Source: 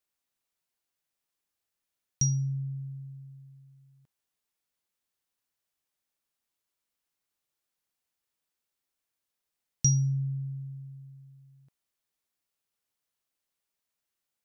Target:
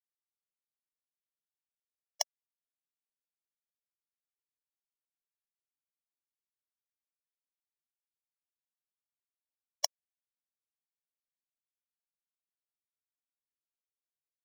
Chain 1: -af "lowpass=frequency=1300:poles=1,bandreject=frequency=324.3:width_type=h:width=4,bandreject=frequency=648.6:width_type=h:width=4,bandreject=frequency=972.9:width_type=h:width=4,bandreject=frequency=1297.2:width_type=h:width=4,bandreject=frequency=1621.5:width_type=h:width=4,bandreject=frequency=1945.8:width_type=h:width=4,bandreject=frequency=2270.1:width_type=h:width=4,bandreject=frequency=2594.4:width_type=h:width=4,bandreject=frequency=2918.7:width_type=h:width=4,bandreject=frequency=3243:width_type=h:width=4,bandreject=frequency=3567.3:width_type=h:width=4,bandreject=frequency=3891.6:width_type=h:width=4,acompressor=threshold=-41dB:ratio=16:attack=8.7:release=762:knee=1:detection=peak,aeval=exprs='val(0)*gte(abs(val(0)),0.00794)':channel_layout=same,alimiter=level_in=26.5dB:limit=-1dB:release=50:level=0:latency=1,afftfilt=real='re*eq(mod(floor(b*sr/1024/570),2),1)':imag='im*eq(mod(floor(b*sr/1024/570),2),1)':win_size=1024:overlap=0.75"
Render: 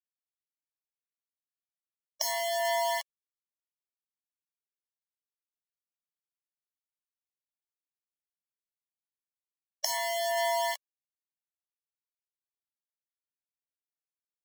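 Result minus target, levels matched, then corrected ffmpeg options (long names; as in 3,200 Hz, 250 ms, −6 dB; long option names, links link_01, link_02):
downward compressor: peak gain reduction −7.5 dB
-af "lowpass=frequency=1300:poles=1,bandreject=frequency=324.3:width_type=h:width=4,bandreject=frequency=648.6:width_type=h:width=4,bandreject=frequency=972.9:width_type=h:width=4,bandreject=frequency=1297.2:width_type=h:width=4,bandreject=frequency=1621.5:width_type=h:width=4,bandreject=frequency=1945.8:width_type=h:width=4,bandreject=frequency=2270.1:width_type=h:width=4,bandreject=frequency=2594.4:width_type=h:width=4,bandreject=frequency=2918.7:width_type=h:width=4,bandreject=frequency=3243:width_type=h:width=4,bandreject=frequency=3567.3:width_type=h:width=4,bandreject=frequency=3891.6:width_type=h:width=4,acompressor=threshold=-49dB:ratio=16:attack=8.7:release=762:knee=1:detection=peak,aeval=exprs='val(0)*gte(abs(val(0)),0.00794)':channel_layout=same,alimiter=level_in=26.5dB:limit=-1dB:release=50:level=0:latency=1,afftfilt=real='re*eq(mod(floor(b*sr/1024/570),2),1)':imag='im*eq(mod(floor(b*sr/1024/570),2),1)':win_size=1024:overlap=0.75"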